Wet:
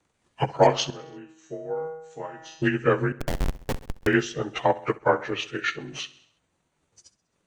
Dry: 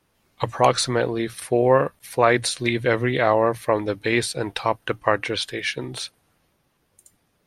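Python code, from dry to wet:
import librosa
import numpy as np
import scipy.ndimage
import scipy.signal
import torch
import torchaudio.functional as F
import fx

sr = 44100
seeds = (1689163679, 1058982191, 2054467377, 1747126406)

y = fx.partial_stretch(x, sr, pct=89)
y = fx.transient(y, sr, attack_db=8, sustain_db=-4)
y = fx.comb_fb(y, sr, f0_hz=160.0, decay_s=0.86, harmonics='all', damping=0.0, mix_pct=90, at=(0.9, 2.62))
y = fx.schmitt(y, sr, flips_db=-12.0, at=(3.12, 4.07))
y = fx.echo_feedback(y, sr, ms=66, feedback_pct=54, wet_db=-18.0)
y = fx.am_noise(y, sr, seeds[0], hz=5.7, depth_pct=60)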